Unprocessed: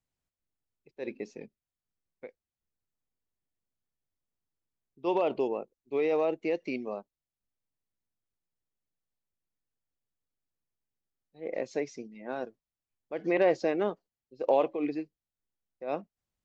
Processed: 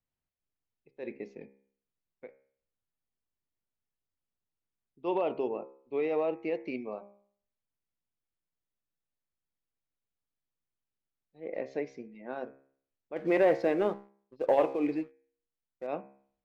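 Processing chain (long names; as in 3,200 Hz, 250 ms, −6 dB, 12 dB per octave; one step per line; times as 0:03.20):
low-pass filter 3,200 Hz 12 dB per octave
hum removal 67.48 Hz, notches 38
0:13.16–0:15.87: leveller curve on the samples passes 1
level −2 dB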